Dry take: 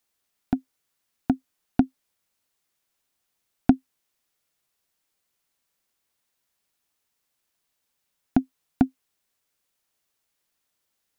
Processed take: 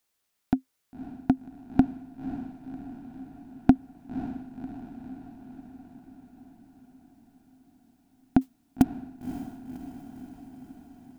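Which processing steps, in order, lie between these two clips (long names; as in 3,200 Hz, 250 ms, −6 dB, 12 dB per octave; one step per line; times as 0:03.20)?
0:08.41–0:08.82: noise that follows the level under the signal 17 dB
feedback delay with all-pass diffusion 545 ms, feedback 64%, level −11 dB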